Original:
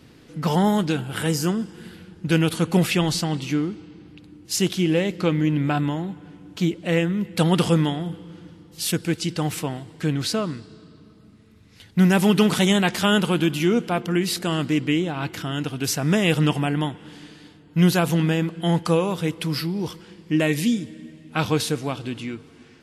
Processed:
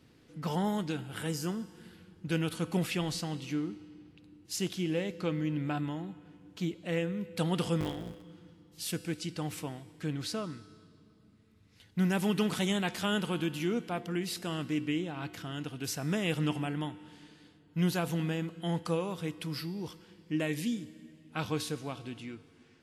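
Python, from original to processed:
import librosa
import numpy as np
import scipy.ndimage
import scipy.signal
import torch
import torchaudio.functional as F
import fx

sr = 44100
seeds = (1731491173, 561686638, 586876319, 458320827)

y = fx.cycle_switch(x, sr, every=3, mode='muted', at=(7.8, 8.23))
y = fx.comb_fb(y, sr, f0_hz=100.0, decay_s=1.4, harmonics='odd', damping=0.0, mix_pct=60)
y = y * librosa.db_to_amplitude(-4.0)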